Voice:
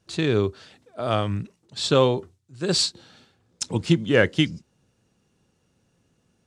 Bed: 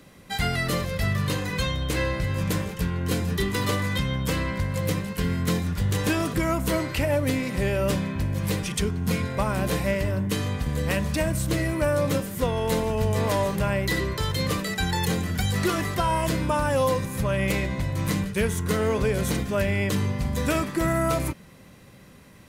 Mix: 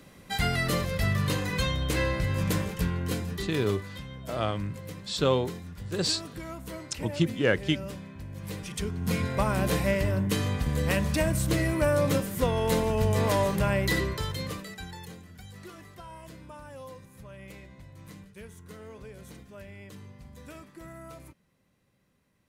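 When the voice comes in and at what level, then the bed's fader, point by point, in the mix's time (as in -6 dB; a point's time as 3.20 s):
3.30 s, -6.0 dB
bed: 2.88 s -1.5 dB
3.82 s -15 dB
8.22 s -15 dB
9.27 s -1 dB
13.97 s -1 dB
15.24 s -21.5 dB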